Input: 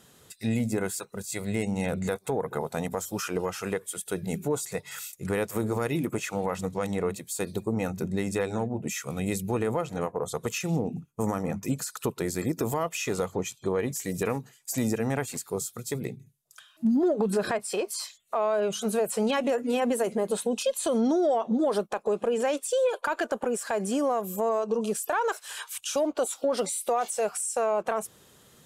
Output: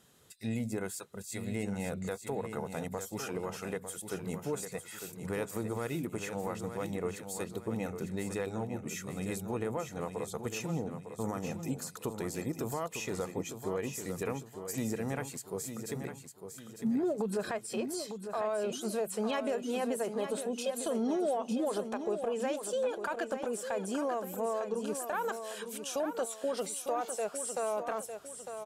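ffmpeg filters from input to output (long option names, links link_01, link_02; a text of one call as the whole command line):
ffmpeg -i in.wav -af "aecho=1:1:903|1806|2709|3612:0.376|0.147|0.0572|0.0223,volume=-7.5dB" out.wav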